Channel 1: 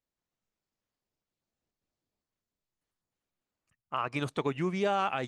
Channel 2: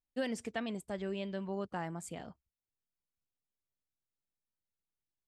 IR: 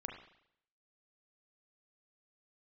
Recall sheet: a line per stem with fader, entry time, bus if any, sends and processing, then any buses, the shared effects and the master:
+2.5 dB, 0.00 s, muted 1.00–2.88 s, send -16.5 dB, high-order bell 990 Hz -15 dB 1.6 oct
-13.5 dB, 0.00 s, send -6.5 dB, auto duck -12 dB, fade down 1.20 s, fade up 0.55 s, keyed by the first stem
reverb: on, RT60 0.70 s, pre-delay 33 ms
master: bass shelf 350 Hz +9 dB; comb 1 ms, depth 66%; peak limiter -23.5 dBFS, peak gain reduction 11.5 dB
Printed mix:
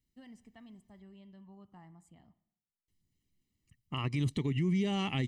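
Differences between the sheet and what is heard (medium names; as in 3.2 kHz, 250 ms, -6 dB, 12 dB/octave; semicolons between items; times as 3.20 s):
stem 1: send off; stem 2 -13.5 dB -> -24.5 dB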